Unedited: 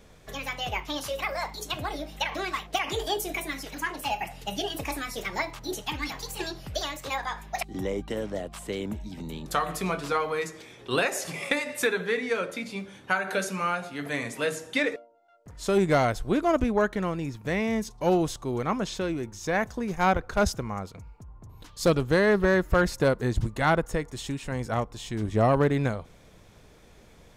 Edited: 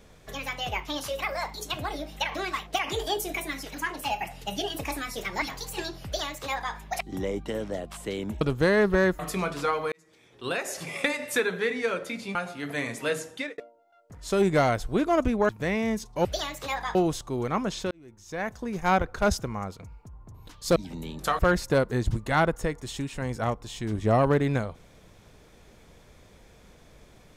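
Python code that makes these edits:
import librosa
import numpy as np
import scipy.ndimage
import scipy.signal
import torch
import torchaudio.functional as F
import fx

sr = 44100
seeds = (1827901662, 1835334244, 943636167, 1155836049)

y = fx.edit(x, sr, fx.cut(start_s=5.42, length_s=0.62),
    fx.duplicate(start_s=6.67, length_s=0.7, to_s=18.1),
    fx.swap(start_s=9.03, length_s=0.63, other_s=21.91, other_length_s=0.78),
    fx.fade_in_span(start_s=10.39, length_s=1.09),
    fx.cut(start_s=12.82, length_s=0.89),
    fx.fade_out_span(start_s=14.58, length_s=0.36),
    fx.cut(start_s=16.85, length_s=0.49),
    fx.fade_in_span(start_s=19.06, length_s=0.96), tone=tone)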